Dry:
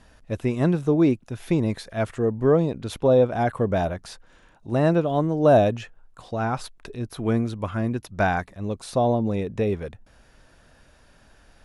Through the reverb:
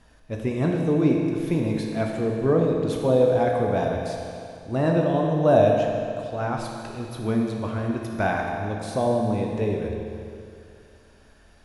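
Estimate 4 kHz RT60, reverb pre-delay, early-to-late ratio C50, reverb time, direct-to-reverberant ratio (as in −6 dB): 2.3 s, 10 ms, 1.5 dB, 2.5 s, 0.0 dB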